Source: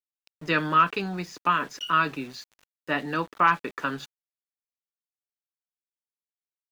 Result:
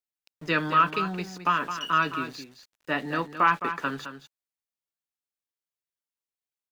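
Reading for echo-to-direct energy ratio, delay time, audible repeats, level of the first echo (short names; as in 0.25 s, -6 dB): -10.0 dB, 0.215 s, 1, -10.0 dB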